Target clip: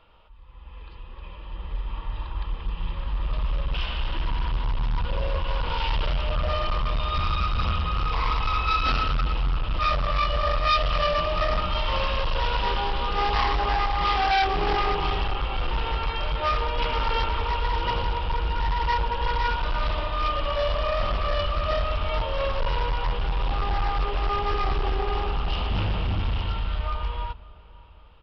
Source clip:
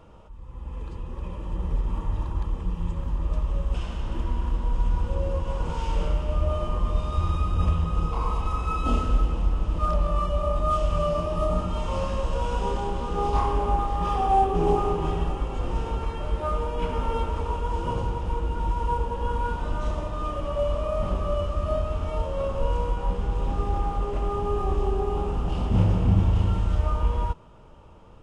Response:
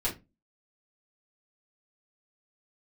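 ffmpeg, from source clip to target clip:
-filter_complex "[0:a]lowpass=frequency=3800:width=0.5412,lowpass=frequency=3800:width=1.3066,equalizer=frequency=190:width=0.35:gain=-13,dynaudnorm=framelen=510:gausssize=11:maxgain=10dB,aresample=11025,asoftclip=type=hard:threshold=-18.5dB,aresample=44100,crystalizer=i=5:c=0,asplit=2[link_01][link_02];[link_02]adelay=555,lowpass=frequency=1100:poles=1,volume=-20dB,asplit=2[link_03][link_04];[link_04]adelay=555,lowpass=frequency=1100:poles=1,volume=0.49,asplit=2[link_05][link_06];[link_06]adelay=555,lowpass=frequency=1100:poles=1,volume=0.49,asplit=2[link_07][link_08];[link_08]adelay=555,lowpass=frequency=1100:poles=1,volume=0.49[link_09];[link_03][link_05][link_07][link_09]amix=inputs=4:normalize=0[link_10];[link_01][link_10]amix=inputs=2:normalize=0,volume=-2.5dB"

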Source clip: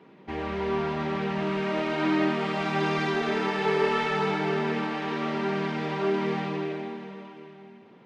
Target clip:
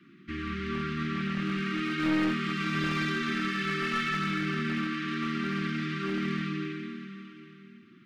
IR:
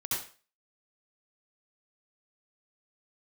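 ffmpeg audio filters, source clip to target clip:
-af "asuperstop=centerf=650:order=20:qfactor=0.84,aeval=exprs='clip(val(0),-1,0.0531)':channel_layout=same"

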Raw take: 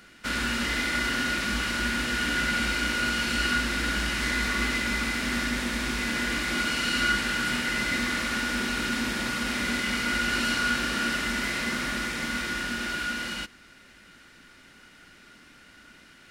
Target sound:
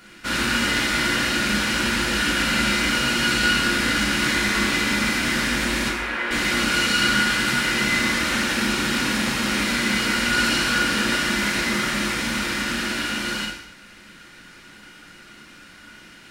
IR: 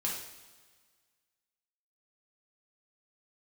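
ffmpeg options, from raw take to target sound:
-filter_complex "[0:a]asettb=1/sr,asplit=3[link_01][link_02][link_03];[link_01]atrim=end=5.884[link_04];[link_02]atrim=start=5.88:end=6.31,asetpts=PTS-STARTPTS,afade=type=in:duration=0.004:curve=qsin,afade=type=out:start_time=0.426:duration=0.004:curve=qsin,acrossover=split=340 2800:gain=0.0891 1 0.0891[link_05][link_06][link_07];[link_05][link_06][link_07]amix=inputs=3:normalize=0[link_08];[link_03]atrim=start=6.306[link_09];[link_04][link_08]acrossfade=duration=0.004:curve1=hsin:curve2=qsin[link_10];[link_10][link_09]acrossfade=duration=0.004:curve1=qsin:curve2=hsin[link_11];[1:a]atrim=start_sample=2205,afade=type=out:start_time=0.34:duration=0.01,atrim=end_sample=15435[link_12];[link_11][link_12]afir=irnorm=-1:irlink=0,volume=3.5dB"

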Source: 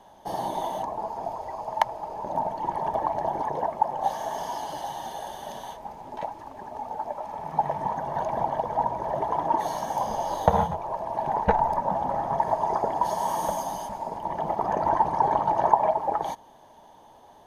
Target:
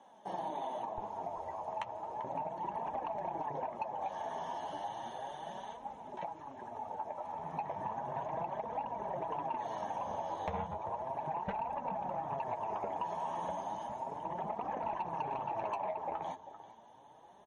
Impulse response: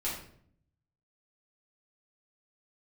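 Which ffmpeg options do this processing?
-filter_complex "[0:a]acrossover=split=4700[link_01][link_02];[link_02]acompressor=threshold=-56dB:ratio=4:attack=1:release=60[link_03];[link_01][link_03]amix=inputs=2:normalize=0,asetnsamples=nb_out_samples=441:pad=0,asendcmd='0.98 highpass f 65',highpass=180,aecho=1:1:392:0.126,asoftclip=type=tanh:threshold=-17dB,highshelf=frequency=8800:gain=-5.5,flanger=delay=3.5:depth=9:regen=32:speed=0.34:shape=triangular,acompressor=threshold=-32dB:ratio=4,equalizer=frequency=4700:width_type=o:width=0.22:gain=-15,volume=-2.5dB" -ar 44100 -c:a libmp3lame -b:a 40k

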